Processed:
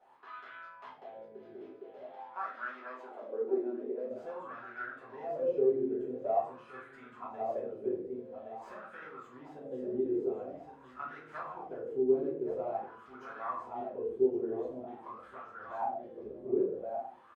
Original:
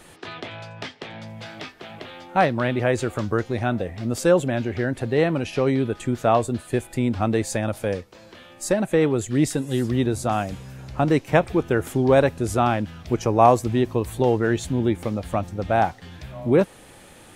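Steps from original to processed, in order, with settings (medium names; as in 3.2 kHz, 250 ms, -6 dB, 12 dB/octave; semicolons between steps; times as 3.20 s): tracing distortion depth 0.1 ms; compression 2.5:1, threshold -25 dBFS, peak gain reduction 11 dB; 1.56–4.10 s: steep high-pass 220 Hz 48 dB/octave; feedback delay 1119 ms, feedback 30%, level -5 dB; simulated room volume 51 m³, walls mixed, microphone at 1.9 m; wah-wah 0.47 Hz 360–1400 Hz, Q 7.9; trim -8 dB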